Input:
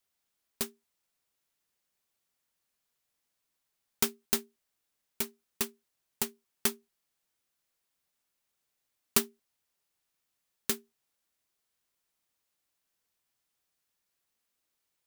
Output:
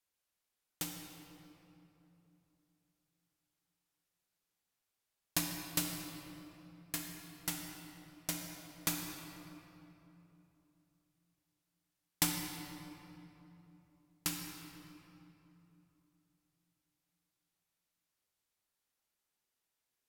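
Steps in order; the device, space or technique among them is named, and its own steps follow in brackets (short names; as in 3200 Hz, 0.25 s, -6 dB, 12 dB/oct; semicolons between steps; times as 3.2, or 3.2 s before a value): slowed and reverbed (varispeed -25%; reverb RT60 3.2 s, pre-delay 22 ms, DRR 1.5 dB); gain -7 dB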